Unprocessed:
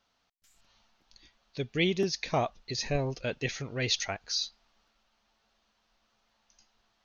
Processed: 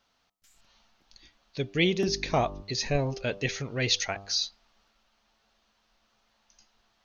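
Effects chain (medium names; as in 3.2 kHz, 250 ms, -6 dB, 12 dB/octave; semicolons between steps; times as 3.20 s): 2.06–2.61 s: mains buzz 50 Hz, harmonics 8, -43 dBFS -4 dB/octave; de-hum 98.74 Hz, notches 13; trim +3 dB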